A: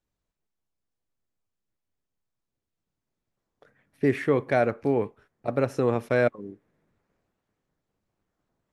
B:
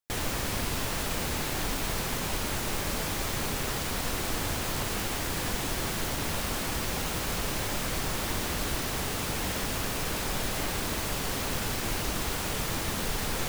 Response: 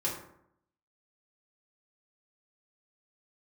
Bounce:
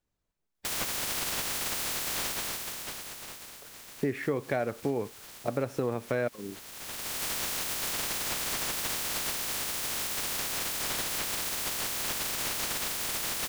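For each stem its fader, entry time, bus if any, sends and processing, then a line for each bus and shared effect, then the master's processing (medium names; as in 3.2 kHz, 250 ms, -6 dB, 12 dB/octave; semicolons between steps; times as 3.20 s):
+0.5 dB, 0.00 s, no send, none
-1.5 dB, 0.55 s, no send, spectral peaks clipped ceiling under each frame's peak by 25 dB; auto duck -16 dB, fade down 1.40 s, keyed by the first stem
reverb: none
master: compression 4:1, threshold -27 dBFS, peak gain reduction 9.5 dB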